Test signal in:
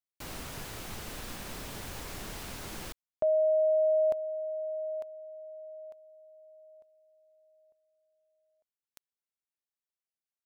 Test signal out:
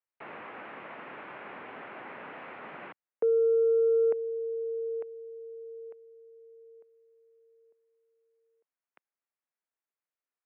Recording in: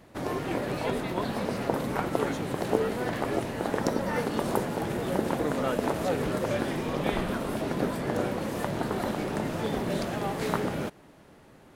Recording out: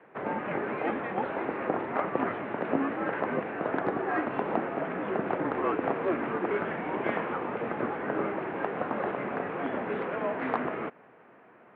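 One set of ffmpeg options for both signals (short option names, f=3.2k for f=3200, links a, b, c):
-filter_complex "[0:a]highpass=f=280:t=q:w=0.5412,highpass=f=280:t=q:w=1.307,lowpass=f=2.7k:t=q:w=0.5176,lowpass=f=2.7k:t=q:w=0.7071,lowpass=f=2.7k:t=q:w=1.932,afreqshift=-170,asplit=2[a][b];[b]highpass=f=720:p=1,volume=11dB,asoftclip=type=tanh:threshold=-11.5dB[c];[a][c]amix=inputs=2:normalize=0,lowpass=f=1.7k:p=1,volume=-6dB,highpass=170"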